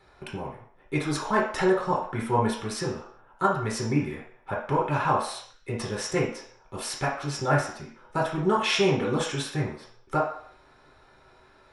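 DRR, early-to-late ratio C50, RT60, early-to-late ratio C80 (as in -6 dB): -4.0 dB, 4.5 dB, 0.65 s, 9.5 dB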